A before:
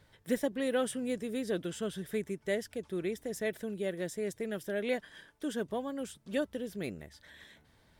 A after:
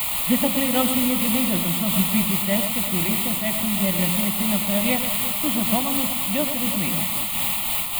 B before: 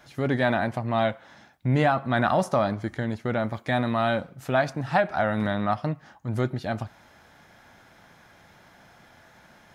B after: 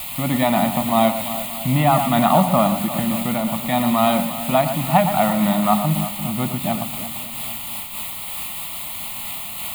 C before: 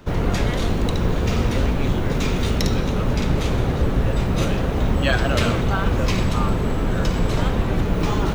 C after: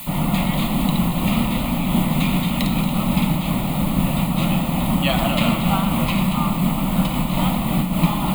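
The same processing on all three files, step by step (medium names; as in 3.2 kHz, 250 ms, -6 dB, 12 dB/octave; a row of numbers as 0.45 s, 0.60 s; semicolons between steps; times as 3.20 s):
resonant low shelf 130 Hz -10 dB, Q 3; de-hum 89.18 Hz, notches 6; word length cut 6-bit, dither triangular; static phaser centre 1.6 kHz, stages 6; on a send: echo whose repeats swap between lows and highs 115 ms, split 2.1 kHz, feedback 78%, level -8.5 dB; on the sum: random flutter of the level, depth 55%; normalise loudness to -20 LUFS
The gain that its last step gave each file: +15.0 dB, +10.0 dB, +5.5 dB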